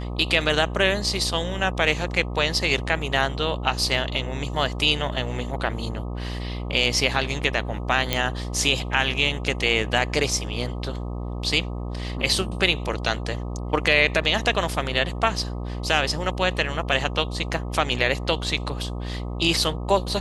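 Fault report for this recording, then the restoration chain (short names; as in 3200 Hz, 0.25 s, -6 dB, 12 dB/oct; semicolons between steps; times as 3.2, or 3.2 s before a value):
buzz 60 Hz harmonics 21 -30 dBFS
8.13 pop -6 dBFS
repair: de-click; de-hum 60 Hz, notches 21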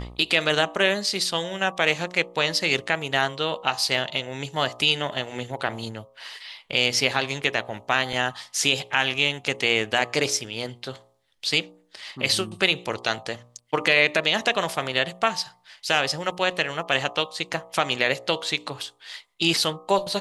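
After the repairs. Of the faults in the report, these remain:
none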